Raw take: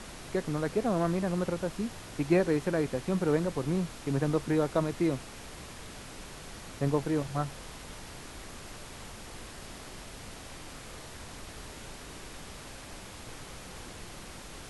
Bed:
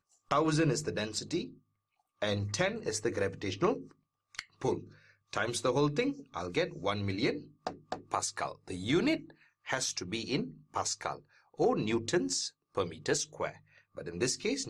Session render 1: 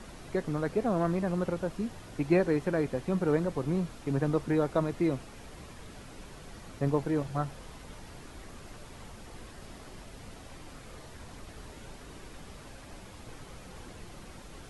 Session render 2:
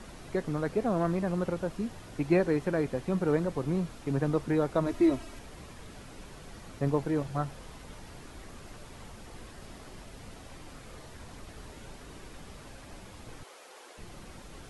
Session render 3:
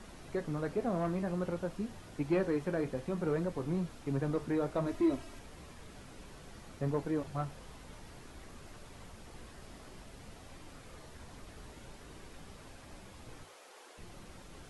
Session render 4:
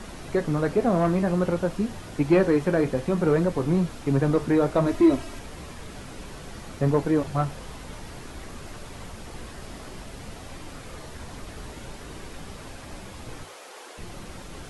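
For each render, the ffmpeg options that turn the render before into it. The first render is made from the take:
ffmpeg -i in.wav -af "afftdn=noise_reduction=7:noise_floor=-46" out.wav
ffmpeg -i in.wav -filter_complex "[0:a]asettb=1/sr,asplit=3[link_01][link_02][link_03];[link_01]atrim=end=4.864[link_04];[link_02]atrim=start=4.86:end=5.39,asetpts=PTS-STARTPTS,afade=type=in:duration=0.004:curve=qsin,afade=type=out:start_time=0.526:duration=0.004:curve=qsin,aecho=1:1:3.1:0.88,atrim=end_sample=23373[link_05];[link_03]atrim=start=5.386[link_06];[link_04][link_05]acrossfade=duration=0.004:curve1=hsin:curve2=qsin[link_07];[link_07][link_06]acrossfade=duration=0.004:curve1=qsin:curve2=hsin,asettb=1/sr,asplit=3[link_08][link_09][link_10];[link_08]atrim=end=13.434[link_11];[link_09]atrim=start=13.43:end=13.98,asetpts=PTS-STARTPTS,afade=type=in:duration=0.004:curve=qsin,afade=type=out:start_time=0.546:duration=0.004:curve=qsin,highpass=frequency=400:width=0.5412,highpass=frequency=400:width=1.3066[link_12];[link_10]atrim=start=13.976[link_13];[link_11][link_12]acrossfade=duration=0.004:curve1=hsin:curve2=qsin[link_14];[link_14][link_13]acrossfade=duration=0.004:curve1=qsin:curve2=hsin" out.wav
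ffmpeg -i in.wav -af "asoftclip=type=tanh:threshold=-17dB,flanger=delay=10:depth=7.1:regen=-62:speed=0.56:shape=triangular" out.wav
ffmpeg -i in.wav -af "volume=11.5dB" out.wav

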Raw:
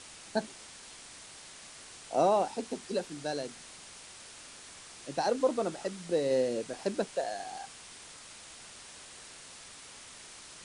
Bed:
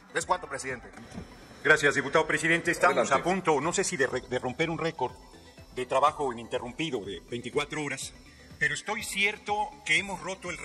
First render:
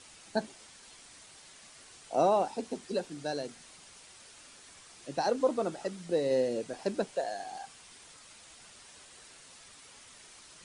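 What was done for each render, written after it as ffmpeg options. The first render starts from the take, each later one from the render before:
ffmpeg -i in.wav -af "afftdn=noise_reduction=6:noise_floor=-50" out.wav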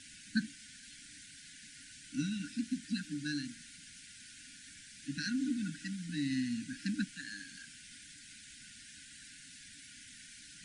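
ffmpeg -i in.wav -af "afftfilt=real='re*(1-between(b*sr/4096,310,1400))':imag='im*(1-between(b*sr/4096,310,1400))':win_size=4096:overlap=0.75,equalizer=frequency=480:width=0.32:gain=5.5" out.wav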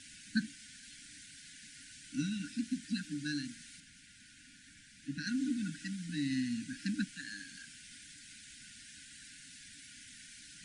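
ffmpeg -i in.wav -filter_complex "[0:a]asettb=1/sr,asplit=3[link_01][link_02][link_03];[link_01]atrim=end=3.804[link_04];[link_02]atrim=start=3.8:end=5.27,asetpts=PTS-STARTPTS,afade=type=in:duration=0.004:curve=qsin,afade=type=out:start_time=1.466:duration=0.004:curve=qsin,highshelf=frequency=2400:gain=-7.5[link_05];[link_03]atrim=start=5.266[link_06];[link_04][link_05]acrossfade=duration=0.004:curve1=hsin:curve2=qsin[link_07];[link_07][link_06]acrossfade=duration=0.004:curve1=qsin:curve2=hsin" out.wav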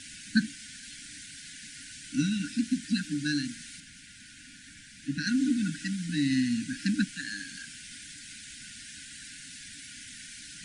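ffmpeg -i in.wav -af "volume=8dB" out.wav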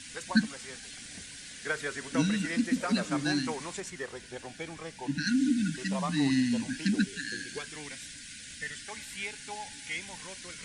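ffmpeg -i in.wav -i bed.wav -filter_complex "[1:a]volume=-12dB[link_01];[0:a][link_01]amix=inputs=2:normalize=0" out.wav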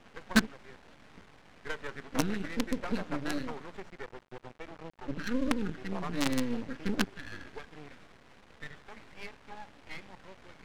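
ffmpeg -i in.wav -af "acrusher=bits=4:dc=4:mix=0:aa=0.000001,adynamicsmooth=sensitivity=4.5:basefreq=1500" out.wav

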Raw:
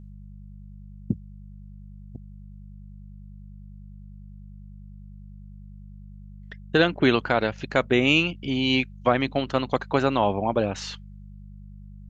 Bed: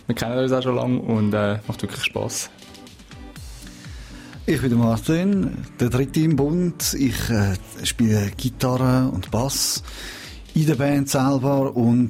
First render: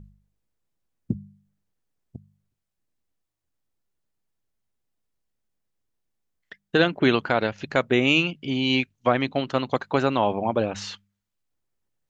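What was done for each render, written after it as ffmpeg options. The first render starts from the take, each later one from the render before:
ffmpeg -i in.wav -af "bandreject=frequency=50:width_type=h:width=4,bandreject=frequency=100:width_type=h:width=4,bandreject=frequency=150:width_type=h:width=4,bandreject=frequency=200:width_type=h:width=4" out.wav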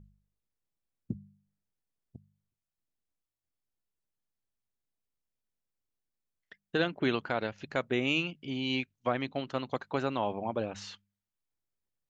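ffmpeg -i in.wav -af "volume=-9.5dB" out.wav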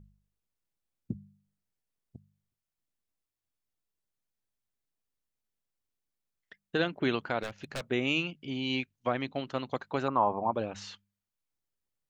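ffmpeg -i in.wav -filter_complex "[0:a]asplit=3[link_01][link_02][link_03];[link_01]afade=type=out:start_time=7.42:duration=0.02[link_04];[link_02]aeval=exprs='0.0335*(abs(mod(val(0)/0.0335+3,4)-2)-1)':channel_layout=same,afade=type=in:start_time=7.42:duration=0.02,afade=type=out:start_time=7.89:duration=0.02[link_05];[link_03]afade=type=in:start_time=7.89:duration=0.02[link_06];[link_04][link_05][link_06]amix=inputs=3:normalize=0,asettb=1/sr,asplit=3[link_07][link_08][link_09];[link_07]atrim=end=10.084[link_10];[link_08]atrim=start=10.08:end=10.53,asetpts=PTS-STARTPTS,afade=type=in:duration=0.004:curve=qsin,afade=type=out:start_time=0.446:duration=0.004:curve=qsin,lowpass=frequency=1100:width_type=q:width=3.7[link_11];[link_09]atrim=start=10.526[link_12];[link_10][link_11]acrossfade=duration=0.004:curve1=hsin:curve2=qsin[link_13];[link_13][link_12]acrossfade=duration=0.004:curve1=qsin:curve2=hsin" out.wav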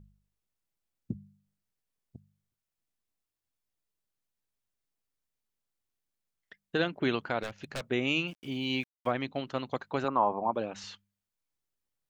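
ffmpeg -i in.wav -filter_complex "[0:a]asettb=1/sr,asplit=3[link_01][link_02][link_03];[link_01]atrim=end=8.284[link_04];[link_02]atrim=start=8.28:end=9.11,asetpts=PTS-STARTPTS,afade=type=in:duration=0.004:curve=qsin,afade=type=out:start_time=0.826:duration=0.004:curve=qsin,aeval=exprs='val(0)*gte(abs(val(0)),0.00266)':channel_layout=same[link_05];[link_03]atrim=start=9.106[link_06];[link_04][link_05]acrossfade=duration=0.004:curve1=hsin:curve2=qsin[link_07];[link_07][link_06]acrossfade=duration=0.004:curve1=qsin:curve2=hsin,asettb=1/sr,asplit=3[link_08][link_09][link_10];[link_08]atrim=end=10.044[link_11];[link_09]atrim=start=10.04:end=10.84,asetpts=PTS-STARTPTS,afade=type=in:duration=0.004:curve=qsin,afade=type=out:start_time=0.796:duration=0.004:curve=qsin,highpass=150[link_12];[link_10]atrim=start=10.836[link_13];[link_11][link_12]acrossfade=duration=0.004:curve1=hsin:curve2=qsin[link_14];[link_14][link_13]acrossfade=duration=0.004:curve1=qsin:curve2=hsin" out.wav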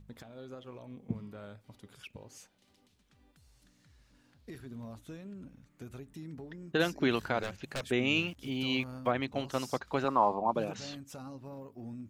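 ffmpeg -i in.wav -i bed.wav -filter_complex "[1:a]volume=-26.5dB[link_01];[0:a][link_01]amix=inputs=2:normalize=0" out.wav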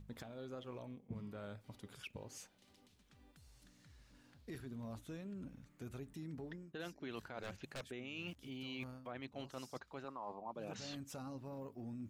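ffmpeg -i in.wav -af "alimiter=limit=-23dB:level=0:latency=1:release=450,areverse,acompressor=threshold=-43dB:ratio=10,areverse" out.wav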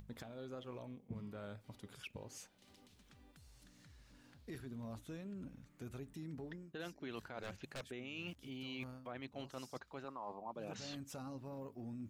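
ffmpeg -i in.wav -af "acompressor=mode=upward:threshold=-58dB:ratio=2.5" out.wav

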